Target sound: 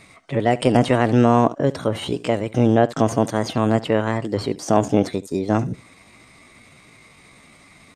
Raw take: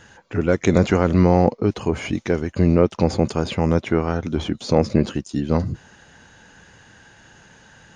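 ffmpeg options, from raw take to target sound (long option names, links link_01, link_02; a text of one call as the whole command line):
ffmpeg -i in.wav -filter_complex "[0:a]asplit=2[link_01][link_02];[link_02]aecho=0:1:73:0.106[link_03];[link_01][link_03]amix=inputs=2:normalize=0,asetrate=58866,aresample=44100,atempo=0.749154" out.wav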